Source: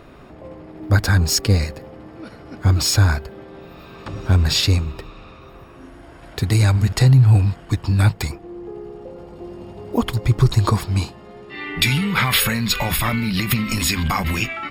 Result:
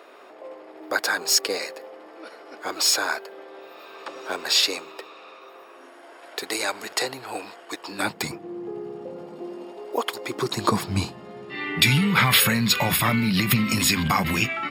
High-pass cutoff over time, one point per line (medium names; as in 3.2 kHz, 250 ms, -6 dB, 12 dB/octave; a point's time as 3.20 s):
high-pass 24 dB/octave
7.86 s 400 Hz
8.33 s 140 Hz
9.14 s 140 Hz
10.03 s 440 Hz
11.00 s 110 Hz